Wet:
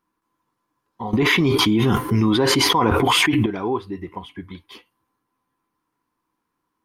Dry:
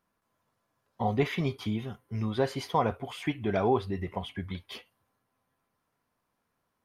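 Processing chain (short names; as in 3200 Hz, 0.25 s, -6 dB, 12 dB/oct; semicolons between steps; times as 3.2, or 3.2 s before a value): thirty-one-band EQ 100 Hz -6 dB, 315 Hz +12 dB, 630 Hz -11 dB, 1000 Hz +8 dB; 1.13–3.46 fast leveller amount 100%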